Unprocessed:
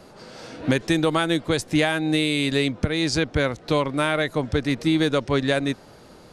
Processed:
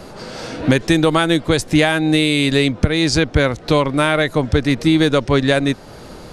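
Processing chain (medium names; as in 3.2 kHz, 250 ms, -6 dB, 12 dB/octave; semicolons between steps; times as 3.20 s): bass shelf 62 Hz +8.5 dB; in parallel at -1 dB: compression, threshold -35 dBFS, peak gain reduction 19.5 dB; on the sum: trim +5 dB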